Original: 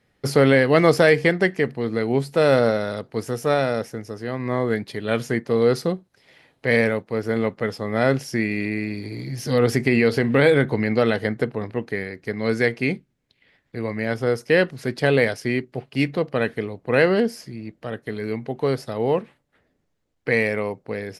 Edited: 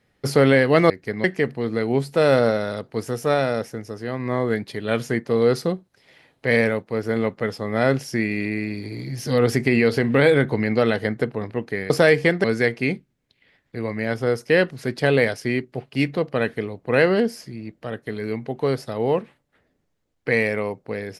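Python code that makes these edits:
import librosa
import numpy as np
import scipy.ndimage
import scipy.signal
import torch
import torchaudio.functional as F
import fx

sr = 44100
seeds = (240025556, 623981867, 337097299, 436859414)

y = fx.edit(x, sr, fx.swap(start_s=0.9, length_s=0.54, other_s=12.1, other_length_s=0.34), tone=tone)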